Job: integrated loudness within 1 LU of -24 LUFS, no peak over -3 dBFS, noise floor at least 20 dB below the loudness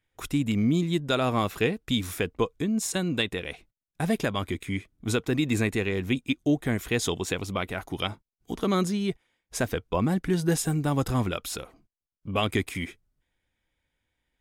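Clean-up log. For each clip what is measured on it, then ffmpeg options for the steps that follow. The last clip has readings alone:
loudness -28.0 LUFS; peak level -12.5 dBFS; loudness target -24.0 LUFS
-> -af "volume=1.58"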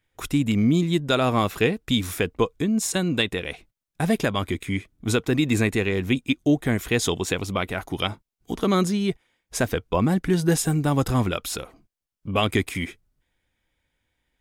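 loudness -24.0 LUFS; peak level -8.5 dBFS; noise floor -84 dBFS

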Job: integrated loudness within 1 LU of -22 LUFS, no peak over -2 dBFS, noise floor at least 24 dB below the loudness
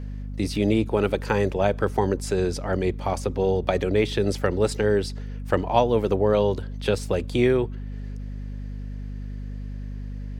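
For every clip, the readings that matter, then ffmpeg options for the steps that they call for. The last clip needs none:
hum 50 Hz; highest harmonic 250 Hz; hum level -30 dBFS; loudness -24.0 LUFS; peak level -5.0 dBFS; loudness target -22.0 LUFS
-> -af "bandreject=f=50:t=h:w=4,bandreject=f=100:t=h:w=4,bandreject=f=150:t=h:w=4,bandreject=f=200:t=h:w=4,bandreject=f=250:t=h:w=4"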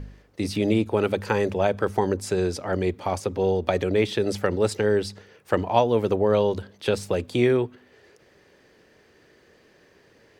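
hum not found; loudness -24.0 LUFS; peak level -5.5 dBFS; loudness target -22.0 LUFS
-> -af "volume=1.26"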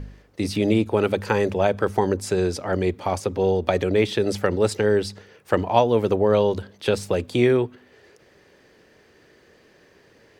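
loudness -22.0 LUFS; peak level -3.5 dBFS; noise floor -56 dBFS

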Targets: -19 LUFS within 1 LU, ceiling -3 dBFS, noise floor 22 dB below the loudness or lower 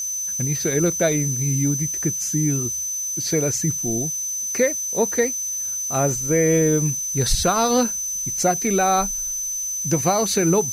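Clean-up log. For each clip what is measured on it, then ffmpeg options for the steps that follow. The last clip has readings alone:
steady tone 6.1 kHz; tone level -24 dBFS; noise floor -27 dBFS; noise floor target -43 dBFS; loudness -20.5 LUFS; peak level -7.5 dBFS; loudness target -19.0 LUFS
-> -af "bandreject=f=6100:w=30"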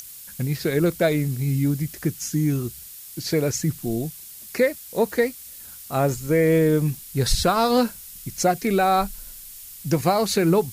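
steady tone not found; noise floor -41 dBFS; noise floor target -45 dBFS
-> -af "afftdn=nr=6:nf=-41"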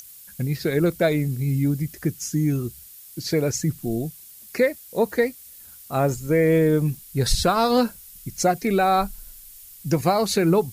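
noise floor -45 dBFS; loudness -22.5 LUFS; peak level -8.5 dBFS; loudness target -19.0 LUFS
-> -af "volume=1.5"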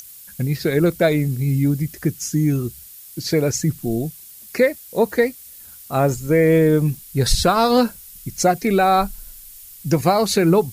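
loudness -19.0 LUFS; peak level -5.0 dBFS; noise floor -42 dBFS

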